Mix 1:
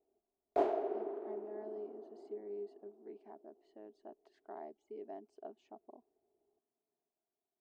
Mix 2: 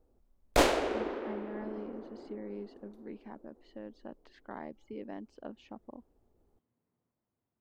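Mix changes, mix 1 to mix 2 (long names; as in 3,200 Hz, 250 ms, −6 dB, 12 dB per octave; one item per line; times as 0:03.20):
speech: add head-to-tape spacing loss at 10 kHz 40 dB
master: remove pair of resonant band-passes 520 Hz, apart 0.7 octaves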